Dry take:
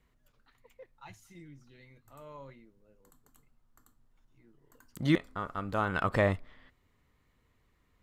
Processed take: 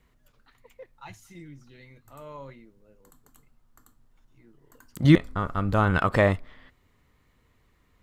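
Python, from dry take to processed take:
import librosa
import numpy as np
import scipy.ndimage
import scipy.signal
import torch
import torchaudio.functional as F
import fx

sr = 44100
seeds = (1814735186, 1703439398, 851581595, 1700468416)

y = fx.low_shelf(x, sr, hz=170.0, db=11.5, at=(5.04, 5.98))
y = F.gain(torch.from_numpy(y), 6.0).numpy()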